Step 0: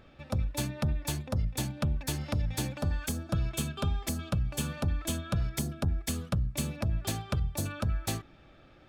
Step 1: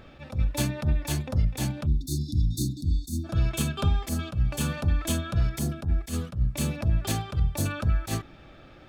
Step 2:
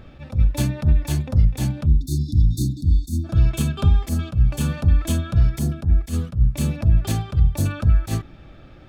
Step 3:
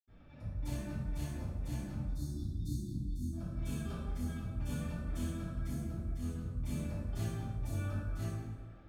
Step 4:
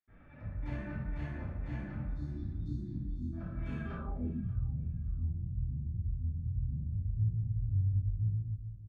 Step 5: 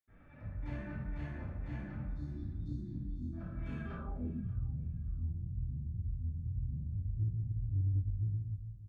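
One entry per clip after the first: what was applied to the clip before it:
spectral delete 1.86–3.24, 380–3500 Hz; attack slew limiter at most 220 dB/s; gain +7 dB
low shelf 240 Hz +9 dB
negative-ratio compressor -19 dBFS, ratio -0.5; reverb RT60 1.6 s, pre-delay 77 ms; gain +4 dB
low-pass sweep 1900 Hz -> 110 Hz, 3.95–4.55; feedback echo 0.582 s, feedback 30%, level -20 dB
resonator 97 Hz, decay 1.6 s, mix 40%; soft clip -26.5 dBFS, distortion -23 dB; gain +2 dB

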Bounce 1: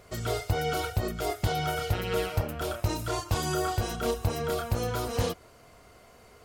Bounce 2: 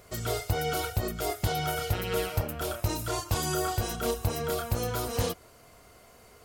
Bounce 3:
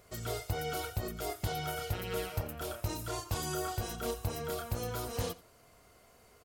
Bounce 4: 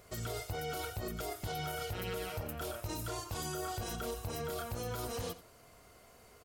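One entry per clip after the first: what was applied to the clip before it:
high shelf 7800 Hz +8.5 dB; gain -1 dB
echo 87 ms -20 dB; gain -6.5 dB
limiter -32 dBFS, peak gain reduction 9.5 dB; gain +2 dB

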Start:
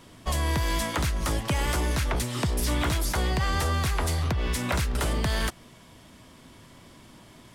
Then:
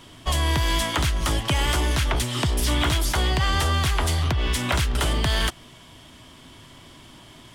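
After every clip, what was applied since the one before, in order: thirty-one-band EQ 200 Hz -7 dB, 500 Hz -5 dB, 3150 Hz +7 dB, 12500 Hz -3 dB; gain +4 dB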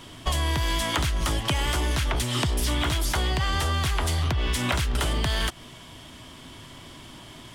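compressor, threshold -24 dBFS, peak gain reduction 6.5 dB; gain +2.5 dB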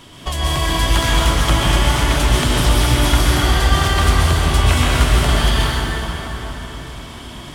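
plate-style reverb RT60 4.4 s, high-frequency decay 0.6×, pre-delay 0.11 s, DRR -7 dB; gain +2 dB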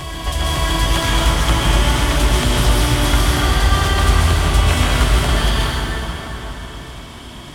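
reverse echo 0.55 s -8.5 dB; gain -1 dB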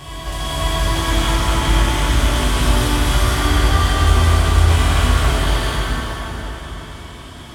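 plate-style reverb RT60 2.3 s, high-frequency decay 0.75×, DRR -7.5 dB; gain -9.5 dB

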